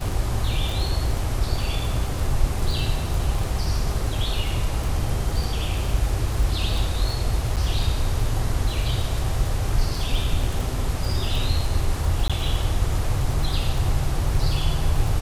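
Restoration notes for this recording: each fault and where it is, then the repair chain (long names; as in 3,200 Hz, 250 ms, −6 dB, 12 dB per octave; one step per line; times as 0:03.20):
surface crackle 27 per second −26 dBFS
0:07.56–0:07.57: drop-out 7.6 ms
0:12.28–0:12.30: drop-out 16 ms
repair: click removal
repair the gap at 0:07.56, 7.6 ms
repair the gap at 0:12.28, 16 ms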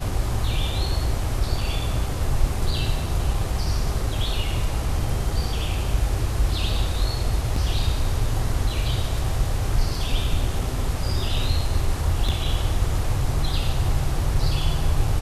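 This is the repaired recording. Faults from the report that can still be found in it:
none of them is left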